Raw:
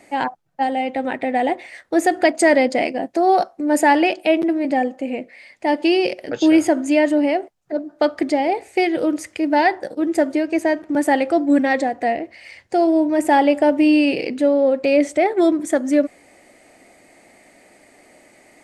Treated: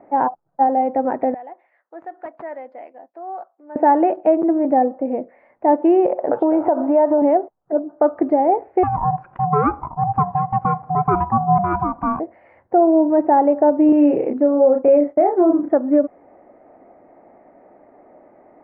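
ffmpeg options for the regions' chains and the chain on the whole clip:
-filter_complex "[0:a]asettb=1/sr,asplit=3[a][b][c];[a]atrim=end=1.344[d];[b]atrim=start=1.34:end=3.76,asetpts=PTS-STARTPTS,afade=t=in:d=0.004:c=qsin,afade=t=out:st=2.416:d=0.004:c=qsin,aderivative,aeval=exprs='(mod(10*val(0)+1,2)-1)/10':c=same,highpass=100,lowpass=6.1k[e];[c]atrim=start=3.756[f];[d][e]acrossfade=d=0.004:c1=hsin:c2=qsin[g];[g][f]acrossfade=d=0.004:c1=qsin:c2=hsin,asettb=1/sr,asplit=3[h][i][j];[h]atrim=end=6.064[k];[i]atrim=start=6.06:end=7.22,asetpts=PTS-STARTPTS,afade=t=in:d=0.004:c=qsin,afade=t=out:st=1.156:d=0.004:c=qsin,equalizer=f=860:w=0.82:g=14.5,acompressor=threshold=-16dB:ratio=6:attack=3.2:release=140:knee=1:detection=peak[l];[j]atrim=start=7.216[m];[k][l]acrossfade=d=0.004:c1=hsin:c2=qsin[n];[n][m]acrossfade=d=0.004:c1=qsin:c2=hsin,asettb=1/sr,asplit=3[o][p][q];[o]atrim=end=8.834[r];[p]atrim=start=8.83:end=12.2,asetpts=PTS-STARTPTS,afade=t=in:d=0.004:c=qsin,afade=t=out:st=3.366:d=0.004:c=qsin,acompressor=mode=upward:threshold=-29dB:ratio=2.5:attack=3.2:release=140:knee=2.83:detection=peak,aeval=exprs='val(0)*sin(2*PI*450*n/s)':c=same[s];[q]atrim=start=12.196[t];[r][s]acrossfade=d=0.004:c1=hsin:c2=qsin[u];[u][t]acrossfade=d=0.004:c1=qsin:c2=hsin,asettb=1/sr,asplit=3[v][w][x];[v]atrim=end=13.894[y];[w]atrim=start=13.89:end=15.71,asetpts=PTS-STARTPTS,afade=t=in:d=0.004:c=qsin,afade=t=out:st=1.816:d=0.004:c=qsin,agate=range=-33dB:threshold=-26dB:ratio=3:release=100:detection=peak,asplit=2[z][aa];[aa]adelay=31,volume=-4.5dB[ab];[z][ab]amix=inputs=2:normalize=0,atrim=end_sample=80262[ac];[x]atrim=start=15.706[ad];[y][ac]acrossfade=d=0.004:c1=hsin:c2=qsin[ae];[ae][ad]acrossfade=d=0.004:c1=qsin:c2=hsin,lowpass=f=1.1k:w=0.5412,lowpass=f=1.1k:w=1.3066,lowshelf=f=290:g=-9,alimiter=limit=-12.5dB:level=0:latency=1:release=231,volume=6.5dB"

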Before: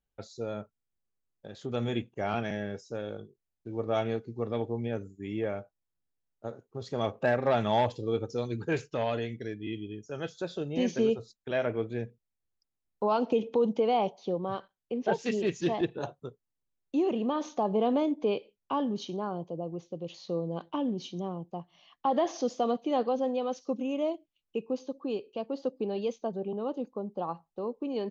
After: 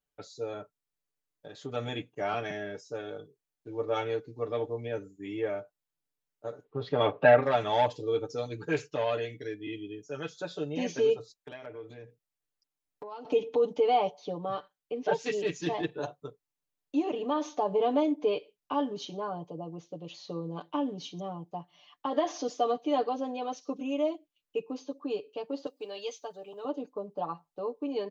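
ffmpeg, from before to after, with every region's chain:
-filter_complex "[0:a]asettb=1/sr,asplit=3[a][b][c];[a]atrim=end=6.644[d];[b]atrim=start=6.64:end=7.43,asetpts=PTS-STARTPTS,afade=t=in:d=0.004:c=qsin,afade=t=out:st=0.786:d=0.004:c=qsin,lowpass=f=3.5k:w=0.5412,lowpass=f=3.5k:w=1.3066,acontrast=66[e];[c]atrim=start=7.426[f];[d][e]acrossfade=d=0.004:c1=hsin:c2=qsin[g];[g][f]acrossfade=d=0.004:c1=qsin:c2=hsin,asettb=1/sr,asplit=3[h][i][j];[h]atrim=end=11.344[k];[i]atrim=start=11.34:end=13.25,asetpts=PTS-STARTPTS,afade=t=in:d=0.004:c=qsin,afade=t=out:st=1.906:d=0.004:c=qsin,acompressor=threshold=-37dB:ratio=20:attack=3.2:release=140:knee=1:detection=peak,asoftclip=type=hard:threshold=-31dB[l];[j]atrim=start=13.246[m];[k][l]acrossfade=d=0.004:c1=hsin:c2=qsin[n];[n][m]acrossfade=d=0.004:c1=qsin:c2=hsin,asettb=1/sr,asplit=3[o][p][q];[o]atrim=end=25.664[r];[p]atrim=start=25.66:end=26.65,asetpts=PTS-STARTPTS,afade=t=in:d=0.004:c=qsin,afade=t=out:st=0.986:d=0.004:c=qsin,highpass=f=990:p=1,highshelf=f=3.9k:g=9.5[s];[q]atrim=start=26.646[t];[r][s]acrossfade=d=0.004:c1=hsin:c2=qsin[u];[u][t]acrossfade=d=0.004:c1=qsin:c2=hsin,lowshelf=f=180:g=-10.5,aecho=1:1:6.8:0.9,volume=-1.5dB"

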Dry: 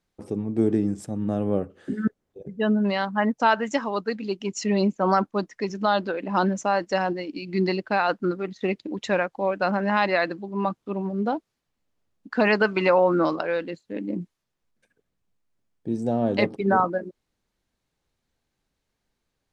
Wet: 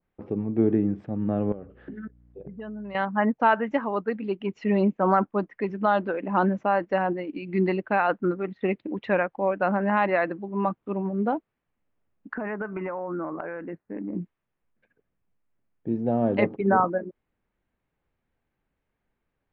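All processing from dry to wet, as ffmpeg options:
-filter_complex "[0:a]asettb=1/sr,asplit=3[a][b][c];[a]atrim=end=1.524[d];[b]atrim=start=1.52:end=2.95,asetpts=PTS-STARTPTS,afade=t=in:d=0.004:c=qsin,afade=t=out:st=1.426:d=0.004:c=qsin,acompressor=threshold=-35dB:ratio=6:attack=3.2:release=140:knee=1:detection=peak,aeval=exprs='val(0)+0.00178*(sin(2*PI*60*n/s)+sin(2*PI*2*60*n/s)/2+sin(2*PI*3*60*n/s)/3+sin(2*PI*4*60*n/s)/4+sin(2*PI*5*60*n/s)/5)':c=same[e];[c]atrim=start=2.946[f];[d][e]acrossfade=d=0.004:c1=hsin:c2=qsin[g];[g][f]acrossfade=d=0.004:c1=qsin:c2=hsin,asettb=1/sr,asplit=3[h][i][j];[h]atrim=end=12.344[k];[i]atrim=start=12.34:end=14.15,asetpts=PTS-STARTPTS,afade=t=in:d=0.004:c=qsin,afade=t=out:st=1.806:d=0.004:c=qsin,lowpass=f=1.9k:w=0.5412,lowpass=f=1.9k:w=1.3066,acompressor=threshold=-28dB:ratio=5:attack=3.2:release=140:knee=1:detection=peak,equalizer=f=510:w=7.9:g=-5.5[l];[j]atrim=start=14.146[m];[k][l]acrossfade=d=0.004:c1=hsin:c2=qsin[n];[n][m]acrossfade=d=0.004:c1=qsin:c2=hsin,lowpass=f=2.6k:w=0.5412,lowpass=f=2.6k:w=1.3066,adynamicequalizer=threshold=0.0178:dfrequency=1500:dqfactor=0.7:tfrequency=1500:tqfactor=0.7:attack=5:release=100:ratio=0.375:range=2:mode=cutabove:tftype=highshelf"

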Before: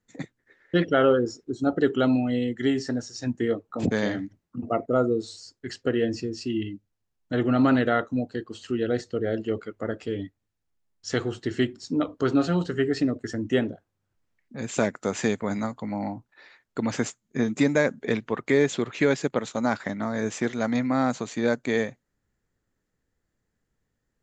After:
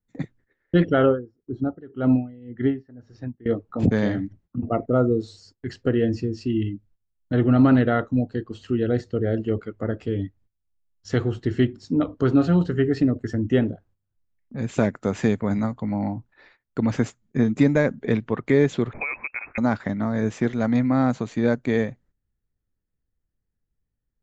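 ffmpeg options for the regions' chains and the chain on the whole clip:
-filter_complex "[0:a]asettb=1/sr,asplit=3[a][b][c];[a]atrim=end=1.064[d];[b]atrim=start=1.06:end=3.46,asetpts=PTS-STARTPTS,afade=t=in:d=0.004:c=qsin,afade=t=out:st=2.396:d=0.004:c=qsin,lowpass=2.1k,aeval=exprs='val(0)*pow(10,-24*(0.5-0.5*cos(2*PI*1.9*n/s))/20)':c=same[e];[c]atrim=start=3.456[f];[d][e]acrossfade=d=0.004:c1=hsin:c2=qsin[g];[g][f]acrossfade=d=0.004:c1=qsin:c2=hsin,asettb=1/sr,asplit=3[h][i][j];[h]atrim=end=18.934[k];[i]atrim=start=18.93:end=19.58,asetpts=PTS-STARTPTS,afade=t=in:d=0.004:c=qsin,afade=t=out:st=0.646:d=0.004:c=qsin,acompressor=threshold=-24dB:ratio=3:attack=3.2:release=140:knee=1:detection=peak,lowpass=f=2.3k:t=q:w=0.5098,lowpass=f=2.3k:t=q:w=0.6013,lowpass=f=2.3k:t=q:w=0.9,lowpass=f=2.3k:t=q:w=2.563,afreqshift=-2700[l];[j]atrim=start=19.576[m];[k][l]acrossfade=d=0.004:c1=hsin:c2=qsin[n];[n][m]acrossfade=d=0.004:c1=qsin:c2=hsin,aemphasis=mode=reproduction:type=bsi,agate=range=-13dB:threshold=-53dB:ratio=16:detection=peak"

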